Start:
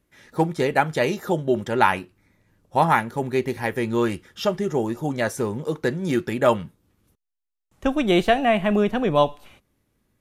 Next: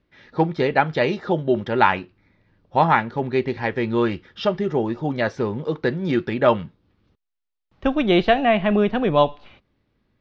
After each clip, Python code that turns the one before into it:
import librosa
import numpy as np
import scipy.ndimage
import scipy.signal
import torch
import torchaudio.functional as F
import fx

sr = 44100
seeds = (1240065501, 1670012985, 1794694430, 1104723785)

y = scipy.signal.sosfilt(scipy.signal.butter(6, 4800.0, 'lowpass', fs=sr, output='sos'), x)
y = F.gain(torch.from_numpy(y), 1.5).numpy()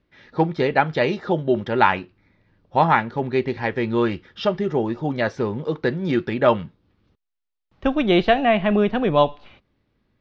y = x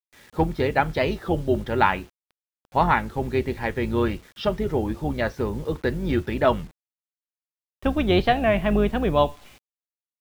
y = fx.octave_divider(x, sr, octaves=2, level_db=-3.0)
y = fx.quant_dither(y, sr, seeds[0], bits=8, dither='none')
y = fx.record_warp(y, sr, rpm=33.33, depth_cents=100.0)
y = F.gain(torch.from_numpy(y), -3.0).numpy()